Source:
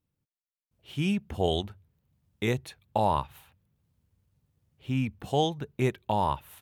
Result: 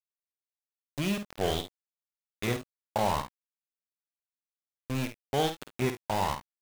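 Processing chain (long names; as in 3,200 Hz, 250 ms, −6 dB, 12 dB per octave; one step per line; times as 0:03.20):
centre clipping without the shift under −27 dBFS
ambience of single reflections 51 ms −8.5 dB, 70 ms −17.5 dB
level −2.5 dB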